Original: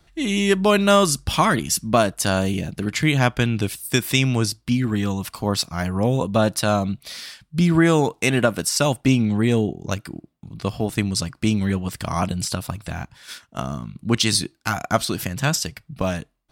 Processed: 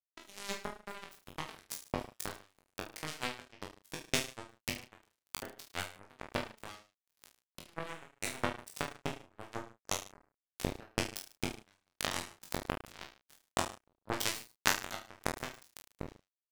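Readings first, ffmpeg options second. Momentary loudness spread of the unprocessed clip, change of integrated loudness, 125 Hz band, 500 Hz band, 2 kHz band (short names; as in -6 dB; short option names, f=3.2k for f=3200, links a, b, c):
13 LU, -18.5 dB, -25.5 dB, -21.0 dB, -14.5 dB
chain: -filter_complex "[0:a]bandreject=f=60:t=h:w=6,bandreject=f=120:t=h:w=6,bandreject=f=180:t=h:w=6,bandreject=f=240:t=h:w=6,bandreject=f=300:t=h:w=6,bandreject=f=360:t=h:w=6,adynamicequalizer=threshold=0.0126:dfrequency=4000:dqfactor=1:tfrequency=4000:tqfactor=1:attack=5:release=100:ratio=0.375:range=2:mode=cutabove:tftype=bell,acompressor=threshold=-33dB:ratio=8,acrusher=bits=3:mix=0:aa=0.5,tremolo=f=1.9:d=0.86,asplit=2[a][b];[b]adelay=32,volume=-8.5dB[c];[a][c]amix=inputs=2:normalize=0,aecho=1:1:20|44|72.8|107.4|148.8:0.631|0.398|0.251|0.158|0.1,volume=10dB"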